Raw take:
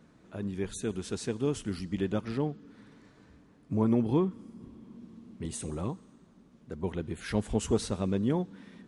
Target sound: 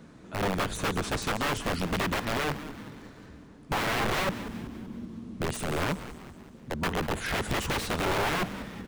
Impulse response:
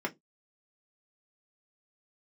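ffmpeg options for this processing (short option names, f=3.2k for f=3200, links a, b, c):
-filter_complex "[0:a]aeval=exprs='(mod(33.5*val(0)+1,2)-1)/33.5':c=same,acrossover=split=3500[a][b];[b]acompressor=threshold=-45dB:ratio=4:attack=1:release=60[c];[a][c]amix=inputs=2:normalize=0,asplit=6[d][e][f][g][h][i];[e]adelay=191,afreqshift=-130,volume=-13.5dB[j];[f]adelay=382,afreqshift=-260,volume=-19.2dB[k];[g]adelay=573,afreqshift=-390,volume=-24.9dB[l];[h]adelay=764,afreqshift=-520,volume=-30.5dB[m];[i]adelay=955,afreqshift=-650,volume=-36.2dB[n];[d][j][k][l][m][n]amix=inputs=6:normalize=0,volume=8.5dB"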